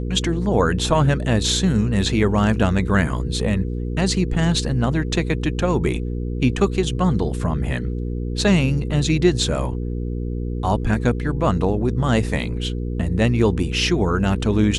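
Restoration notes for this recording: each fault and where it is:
hum 60 Hz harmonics 8 -25 dBFS

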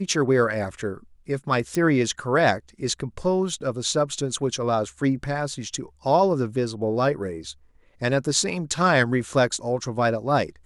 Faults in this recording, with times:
1.75 s: pop

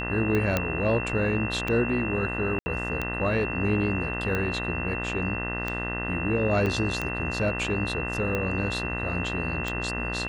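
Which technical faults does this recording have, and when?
buzz 60 Hz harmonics 34 -33 dBFS
tick 45 rpm -15 dBFS
whine 2.7 kHz -32 dBFS
0.57 s: pop -9 dBFS
2.59–2.66 s: dropout 70 ms
6.66–6.67 s: dropout 6.2 ms

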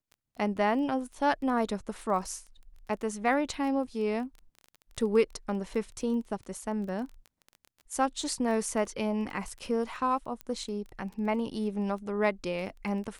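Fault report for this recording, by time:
crackle 15 per s -37 dBFS
10.41 s: pop -23 dBFS

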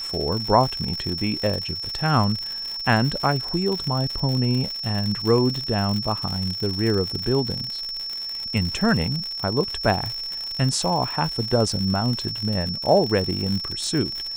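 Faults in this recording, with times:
crackle 110 per s -26 dBFS
whine 5.4 kHz -28 dBFS

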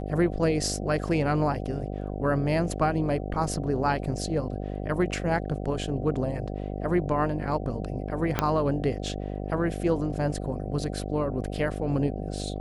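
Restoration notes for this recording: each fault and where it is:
buzz 50 Hz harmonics 15 -33 dBFS
8.39 s: pop -8 dBFS

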